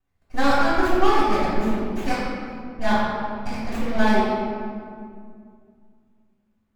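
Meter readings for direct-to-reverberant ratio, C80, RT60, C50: -14.0 dB, 0.0 dB, 2.2 s, -2.5 dB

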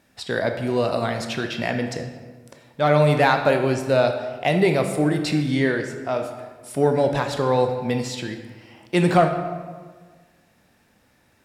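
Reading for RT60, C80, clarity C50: 1.5 s, 9.0 dB, 7.0 dB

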